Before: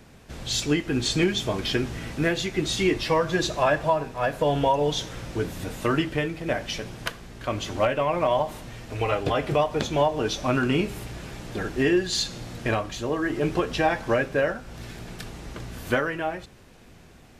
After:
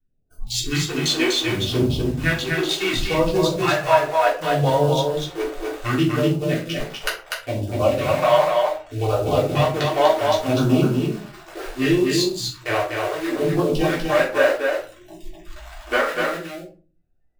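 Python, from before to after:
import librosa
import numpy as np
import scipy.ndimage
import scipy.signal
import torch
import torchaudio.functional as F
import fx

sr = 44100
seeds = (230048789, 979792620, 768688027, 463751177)

p1 = fx.wiener(x, sr, points=41)
p2 = fx.vibrato(p1, sr, rate_hz=2.5, depth_cents=31.0)
p3 = fx.peak_eq(p2, sr, hz=200.0, db=-9.5, octaves=2.3)
p4 = fx.quant_companded(p3, sr, bits=2)
p5 = p3 + F.gain(torch.from_numpy(p4), -11.5).numpy()
p6 = fx.phaser_stages(p5, sr, stages=2, low_hz=130.0, high_hz=2100.0, hz=0.68, feedback_pct=5)
p7 = fx.noise_reduce_blind(p6, sr, reduce_db=27)
p8 = p7 + fx.echo_single(p7, sr, ms=246, db=-3.5, dry=0)
p9 = fx.room_shoebox(p8, sr, seeds[0], volume_m3=200.0, walls='furnished', distance_m=3.4)
y = F.gain(torch.from_numpy(p9), 1.5).numpy()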